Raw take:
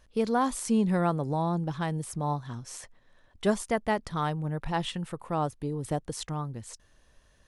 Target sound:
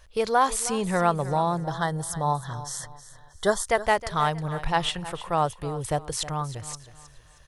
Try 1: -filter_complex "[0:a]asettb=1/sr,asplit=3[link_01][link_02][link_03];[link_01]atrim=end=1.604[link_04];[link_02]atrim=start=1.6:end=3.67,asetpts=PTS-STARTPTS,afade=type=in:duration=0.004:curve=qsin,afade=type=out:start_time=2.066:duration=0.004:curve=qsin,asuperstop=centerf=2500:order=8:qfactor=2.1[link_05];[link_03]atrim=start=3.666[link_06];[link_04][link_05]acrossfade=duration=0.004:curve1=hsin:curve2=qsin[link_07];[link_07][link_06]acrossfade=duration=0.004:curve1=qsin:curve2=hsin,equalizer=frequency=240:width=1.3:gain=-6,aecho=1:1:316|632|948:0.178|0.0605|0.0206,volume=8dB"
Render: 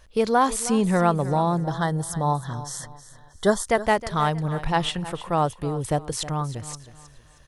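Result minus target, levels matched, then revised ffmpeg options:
250 Hz band +4.0 dB
-filter_complex "[0:a]asettb=1/sr,asplit=3[link_01][link_02][link_03];[link_01]atrim=end=1.604[link_04];[link_02]atrim=start=1.6:end=3.67,asetpts=PTS-STARTPTS,afade=type=in:duration=0.004:curve=qsin,afade=type=out:start_time=2.066:duration=0.004:curve=qsin,asuperstop=centerf=2500:order=8:qfactor=2.1[link_05];[link_03]atrim=start=3.666[link_06];[link_04][link_05]acrossfade=duration=0.004:curve1=hsin:curve2=qsin[link_07];[link_07][link_06]acrossfade=duration=0.004:curve1=qsin:curve2=hsin,equalizer=frequency=240:width=1.3:gain=-16,aecho=1:1:316|632|948:0.178|0.0605|0.0206,volume=8dB"

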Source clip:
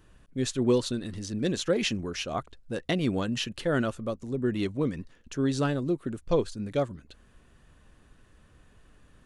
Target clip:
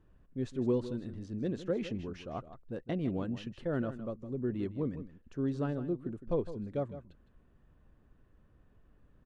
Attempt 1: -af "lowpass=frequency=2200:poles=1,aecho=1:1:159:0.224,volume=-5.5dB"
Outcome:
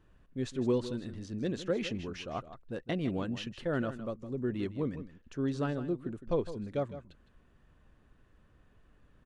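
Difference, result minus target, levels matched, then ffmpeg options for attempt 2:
2,000 Hz band +5.5 dB
-af "lowpass=frequency=720:poles=1,aecho=1:1:159:0.224,volume=-5.5dB"

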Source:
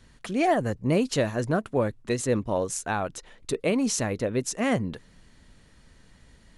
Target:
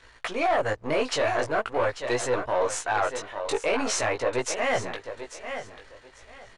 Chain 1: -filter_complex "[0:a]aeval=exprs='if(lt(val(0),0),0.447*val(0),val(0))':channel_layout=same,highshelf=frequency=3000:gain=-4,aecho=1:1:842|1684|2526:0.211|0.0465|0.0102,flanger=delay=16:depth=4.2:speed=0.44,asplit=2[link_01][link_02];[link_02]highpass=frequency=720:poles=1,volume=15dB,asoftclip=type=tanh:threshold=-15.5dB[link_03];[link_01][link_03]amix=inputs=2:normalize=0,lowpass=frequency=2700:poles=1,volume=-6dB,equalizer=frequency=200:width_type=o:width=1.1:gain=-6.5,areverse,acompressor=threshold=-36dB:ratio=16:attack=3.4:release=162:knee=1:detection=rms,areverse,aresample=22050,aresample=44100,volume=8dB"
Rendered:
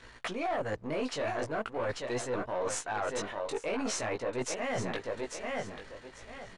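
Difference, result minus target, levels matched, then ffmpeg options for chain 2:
downward compressor: peak gain reduction +10.5 dB; 250 Hz band +4.5 dB
-filter_complex "[0:a]aeval=exprs='if(lt(val(0),0),0.447*val(0),val(0))':channel_layout=same,highshelf=frequency=3000:gain=-4,aecho=1:1:842|1684|2526:0.211|0.0465|0.0102,flanger=delay=16:depth=4.2:speed=0.44,asplit=2[link_01][link_02];[link_02]highpass=frequency=720:poles=1,volume=15dB,asoftclip=type=tanh:threshold=-15.5dB[link_03];[link_01][link_03]amix=inputs=2:normalize=0,lowpass=frequency=2700:poles=1,volume=-6dB,equalizer=frequency=200:width_type=o:width=1.1:gain=-17.5,areverse,acompressor=threshold=-26.5dB:ratio=16:attack=3.4:release=162:knee=1:detection=rms,areverse,aresample=22050,aresample=44100,volume=8dB"

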